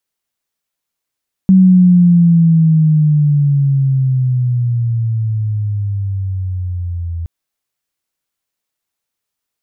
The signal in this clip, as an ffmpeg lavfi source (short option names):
-f lavfi -i "aevalsrc='pow(10,(-3.5-15*t/5.77)/20)*sin(2*PI*190*5.77/log(83/190)*(exp(log(83/190)*t/5.77)-1))':d=5.77:s=44100"